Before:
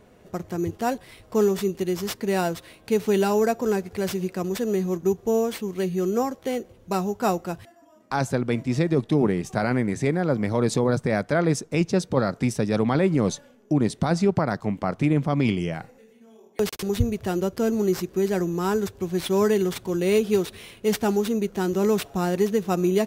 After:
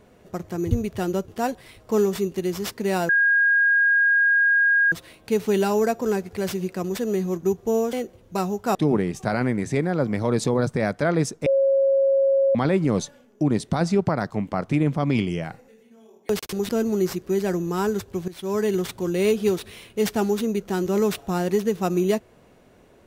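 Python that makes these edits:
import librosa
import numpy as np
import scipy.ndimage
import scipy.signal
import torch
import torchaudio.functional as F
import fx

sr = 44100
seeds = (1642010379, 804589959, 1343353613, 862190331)

y = fx.edit(x, sr, fx.insert_tone(at_s=2.52, length_s=1.83, hz=1630.0, db=-15.0),
    fx.cut(start_s=5.53, length_s=0.96),
    fx.cut(start_s=7.31, length_s=1.74),
    fx.bleep(start_s=11.76, length_s=1.09, hz=545.0, db=-15.5),
    fx.move(start_s=16.99, length_s=0.57, to_s=0.71),
    fx.fade_in_from(start_s=19.15, length_s=0.49, floor_db=-17.5), tone=tone)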